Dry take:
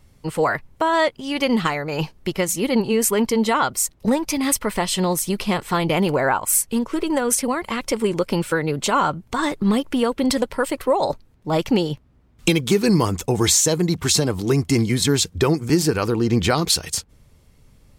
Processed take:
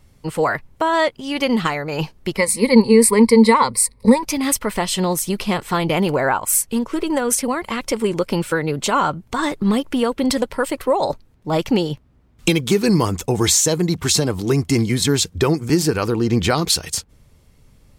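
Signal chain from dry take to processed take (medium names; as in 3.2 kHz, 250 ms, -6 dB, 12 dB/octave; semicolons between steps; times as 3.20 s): 2.37–4.23 s: rippled EQ curve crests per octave 0.93, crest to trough 16 dB; trim +1 dB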